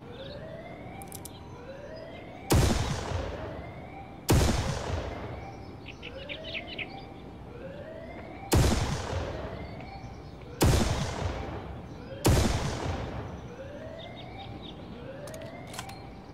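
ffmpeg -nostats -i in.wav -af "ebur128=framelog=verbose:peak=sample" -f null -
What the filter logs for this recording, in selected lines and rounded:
Integrated loudness:
  I:         -32.1 LUFS
  Threshold: -42.9 LUFS
Loudness range:
  LRA:         9.5 LU
  Threshold: -52.3 LUFS
  LRA low:   -39.5 LUFS
  LRA high:  -30.0 LUFS
Sample peak:
  Peak:      -14.4 dBFS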